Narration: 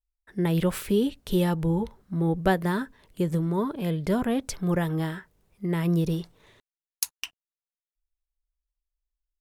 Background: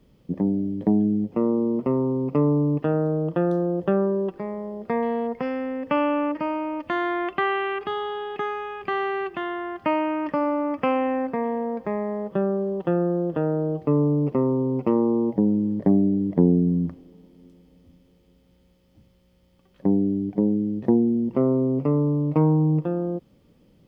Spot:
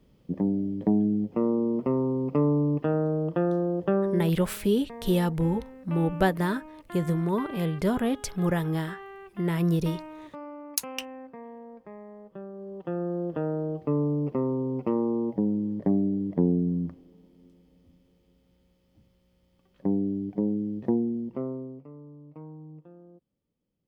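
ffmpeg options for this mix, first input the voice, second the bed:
-filter_complex "[0:a]adelay=3750,volume=0.944[s0];[1:a]volume=2.82,afade=t=out:st=3.99:d=0.48:silence=0.188365,afade=t=in:st=12.53:d=0.73:silence=0.251189,afade=t=out:st=20.86:d=1:silence=0.105925[s1];[s0][s1]amix=inputs=2:normalize=0"

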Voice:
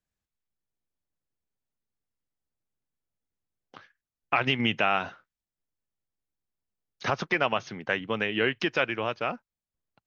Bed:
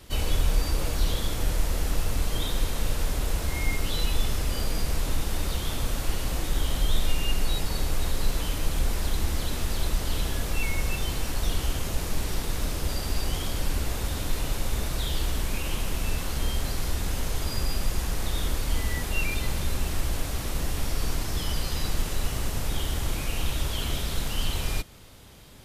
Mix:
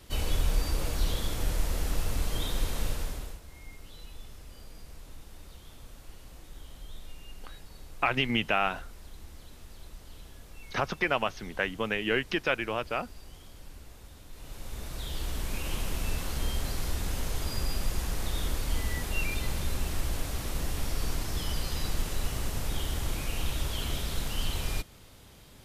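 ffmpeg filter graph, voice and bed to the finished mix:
-filter_complex "[0:a]adelay=3700,volume=0.794[s0];[1:a]volume=4.73,afade=t=out:st=2.83:d=0.57:silence=0.141254,afade=t=in:st=14.31:d=1.44:silence=0.141254[s1];[s0][s1]amix=inputs=2:normalize=0"

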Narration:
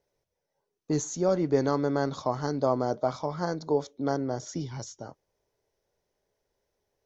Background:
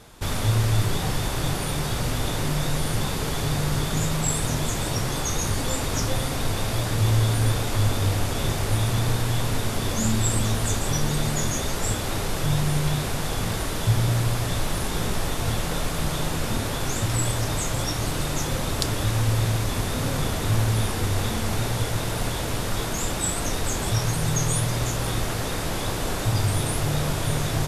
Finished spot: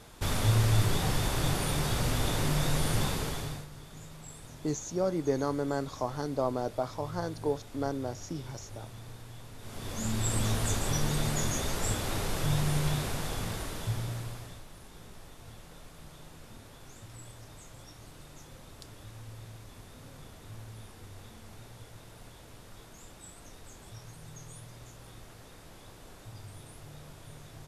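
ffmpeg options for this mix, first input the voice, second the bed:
-filter_complex "[0:a]adelay=3750,volume=0.596[s0];[1:a]volume=5.01,afade=t=out:st=3.03:d=0.64:silence=0.105925,afade=t=in:st=9.58:d=0.89:silence=0.133352,afade=t=out:st=12.86:d=1.78:silence=0.11885[s1];[s0][s1]amix=inputs=2:normalize=0"

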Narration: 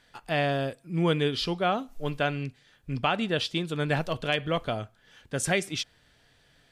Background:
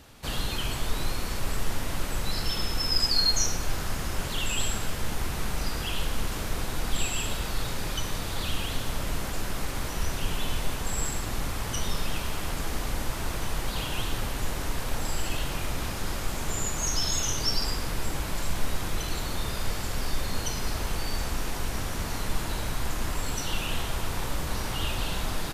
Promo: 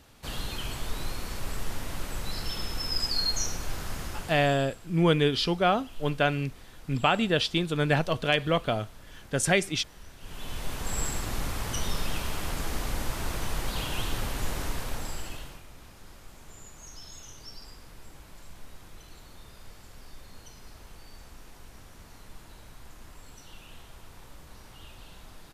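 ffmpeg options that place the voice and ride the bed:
-filter_complex "[0:a]adelay=4000,volume=1.33[s0];[1:a]volume=5.01,afade=t=out:st=4.01:d=0.63:silence=0.177828,afade=t=in:st=10.19:d=0.78:silence=0.11885,afade=t=out:st=14.6:d=1.03:silence=0.133352[s1];[s0][s1]amix=inputs=2:normalize=0"

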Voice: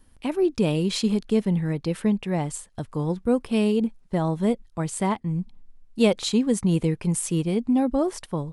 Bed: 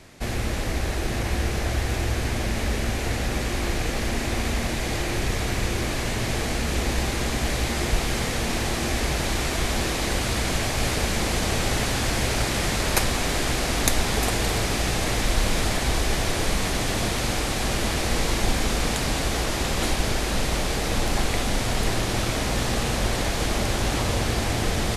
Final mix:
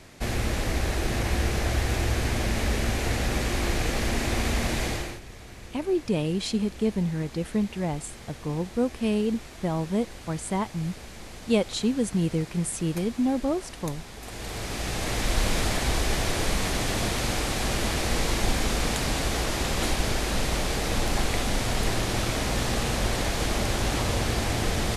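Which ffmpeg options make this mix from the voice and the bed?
-filter_complex "[0:a]adelay=5500,volume=0.668[s0];[1:a]volume=6.31,afade=t=out:st=4.83:d=0.37:silence=0.125893,afade=t=in:st=14.2:d=1.21:silence=0.149624[s1];[s0][s1]amix=inputs=2:normalize=0"

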